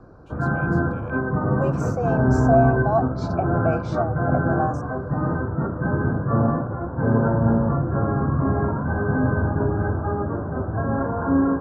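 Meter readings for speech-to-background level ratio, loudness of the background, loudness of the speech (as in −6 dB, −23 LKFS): −4.0 dB, −22.5 LKFS, −26.5 LKFS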